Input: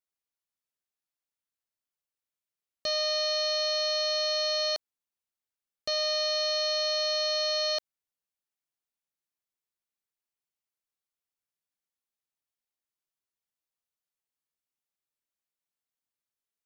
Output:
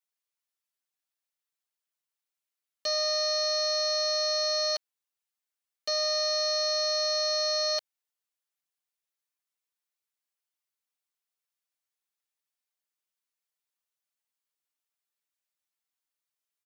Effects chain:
high-pass filter 790 Hz 6 dB per octave
comb filter 6.7 ms, depth 80%

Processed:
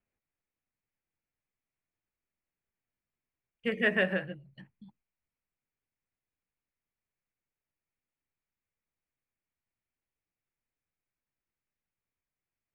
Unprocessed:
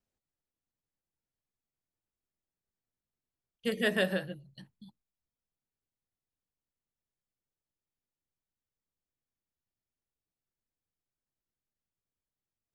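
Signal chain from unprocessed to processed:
low-pass filter 6,900 Hz 12 dB per octave
high shelf with overshoot 3,100 Hz −9.5 dB, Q 3

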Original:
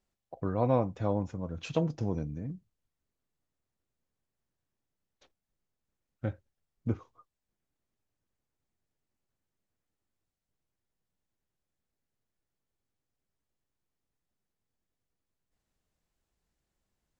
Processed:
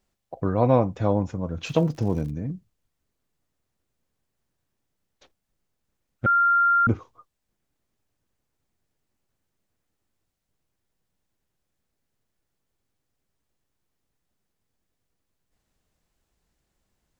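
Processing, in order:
0:01.64–0:02.30: surface crackle 150 per second −46 dBFS
0:06.26–0:06.87: beep over 1,390 Hz −23.5 dBFS
level +7.5 dB

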